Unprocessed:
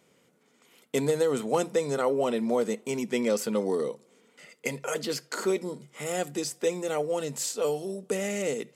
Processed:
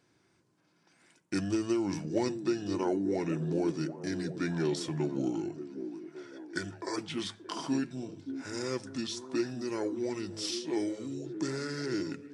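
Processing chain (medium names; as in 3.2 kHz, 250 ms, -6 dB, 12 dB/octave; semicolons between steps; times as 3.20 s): hum notches 50/100/150/200/250/300 Hz; tape speed -29%; repeats whose band climbs or falls 575 ms, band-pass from 270 Hz, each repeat 0.7 oct, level -8 dB; trim -5 dB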